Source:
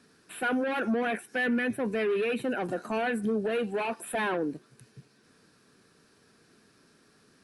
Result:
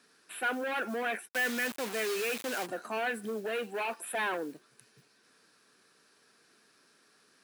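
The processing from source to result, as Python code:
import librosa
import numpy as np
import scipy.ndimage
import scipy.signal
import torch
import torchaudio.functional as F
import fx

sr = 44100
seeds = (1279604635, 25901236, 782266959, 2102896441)

y = fx.mod_noise(x, sr, seeds[0], snr_db=30)
y = fx.quant_dither(y, sr, seeds[1], bits=6, dither='none', at=(1.27, 2.65), fade=0.02)
y = fx.highpass(y, sr, hz=760.0, slope=6)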